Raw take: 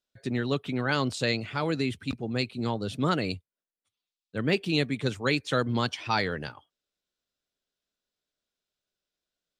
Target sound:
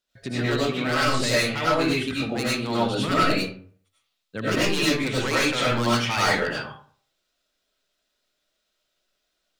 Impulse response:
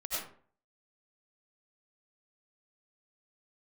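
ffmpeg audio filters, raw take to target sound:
-filter_complex "[0:a]equalizer=f=2500:w=0.37:g=3.5,bandreject=f=50:t=h:w=6,bandreject=f=100:t=h:w=6,bandreject=f=150:t=h:w=6,asplit=2[s0][s1];[s1]acompressor=threshold=0.0178:ratio=4,volume=1.26[s2];[s0][s2]amix=inputs=2:normalize=0,aeval=exprs='0.168*(abs(mod(val(0)/0.168+3,4)-2)-1)':c=same[s3];[1:a]atrim=start_sample=2205[s4];[s3][s4]afir=irnorm=-1:irlink=0"

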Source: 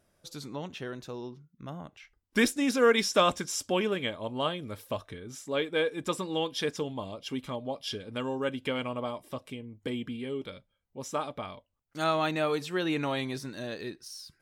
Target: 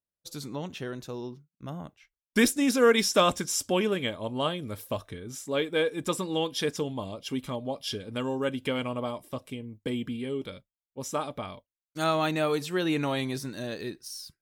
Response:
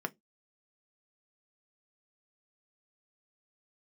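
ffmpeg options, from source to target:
-af "highshelf=f=7400:g=9.5,agate=range=0.0224:threshold=0.00708:ratio=3:detection=peak,lowshelf=f=450:g=4"

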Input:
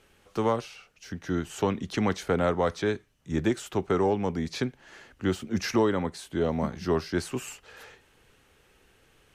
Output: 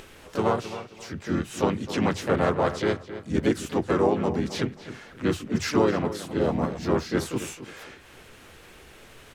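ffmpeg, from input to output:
-filter_complex "[0:a]bandreject=f=50:t=h:w=6,bandreject=f=100:t=h:w=6,bandreject=f=150:t=h:w=6,acompressor=mode=upward:threshold=0.01:ratio=2.5,asplit=3[s0][s1][s2];[s1]asetrate=37084,aresample=44100,atempo=1.18921,volume=0.631[s3];[s2]asetrate=55563,aresample=44100,atempo=0.793701,volume=0.562[s4];[s0][s3][s4]amix=inputs=3:normalize=0,asplit=2[s5][s6];[s6]adelay=266,lowpass=f=3800:p=1,volume=0.237,asplit=2[s7][s8];[s8]adelay=266,lowpass=f=3800:p=1,volume=0.29,asplit=2[s9][s10];[s10]adelay=266,lowpass=f=3800:p=1,volume=0.29[s11];[s7][s9][s11]amix=inputs=3:normalize=0[s12];[s5][s12]amix=inputs=2:normalize=0"

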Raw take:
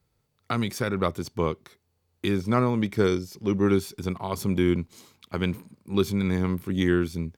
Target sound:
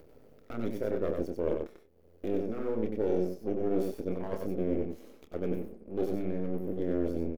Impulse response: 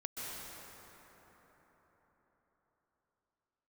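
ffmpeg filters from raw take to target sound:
-filter_complex "[0:a]highpass=f=62:w=0.5412,highpass=f=62:w=1.3066,asplit=2[s0][s1];[s1]adelay=27,volume=0.447[s2];[s0][s2]amix=inputs=2:normalize=0,areverse,acompressor=threshold=0.0282:ratio=6,areverse,highshelf=f=8000:g=-11.5,aeval=exprs='max(val(0),0)':c=same,acompressor=mode=upward:threshold=0.00631:ratio=2.5,equalizer=f=125:t=o:w=1:g=-11,equalizer=f=250:t=o:w=1:g=4,equalizer=f=500:t=o:w=1:g=10,equalizer=f=1000:t=o:w=1:g=-9,equalizer=f=2000:t=o:w=1:g=-4,equalizer=f=4000:t=o:w=1:g=-11,equalizer=f=8000:t=o:w=1:g=-10,asplit=2[s3][s4];[s4]aecho=0:1:94:0.596[s5];[s3][s5]amix=inputs=2:normalize=0,volume=1.41"

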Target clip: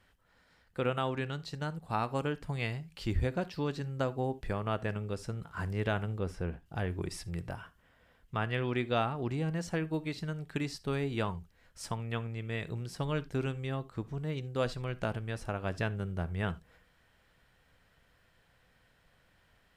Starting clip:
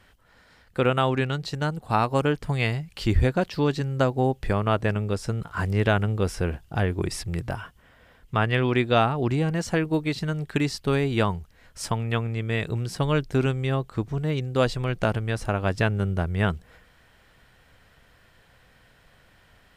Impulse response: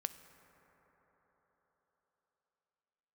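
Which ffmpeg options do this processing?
-filter_complex "[0:a]asettb=1/sr,asplit=3[s0][s1][s2];[s0]atrim=end=6.194[s3];[s1]atrim=start=6.19:end=6.66,asetpts=PTS-STARTPTS,afade=t=in:d=0.004:c=qsin,afade=t=out:st=0.466:d=0.004:c=qsin,highshelf=f=3100:g=-9.5[s4];[s2]atrim=start=6.656[s5];[s3][s4]acrossfade=d=0.004:c1=hsin:c2=qsin[s6];[s6][s5]acrossfade=d=0.004:c1=qsin:c2=hsin[s7];[1:a]atrim=start_sample=2205,atrim=end_sample=3969[s8];[s7][s8]afir=irnorm=-1:irlink=0,volume=0.376"

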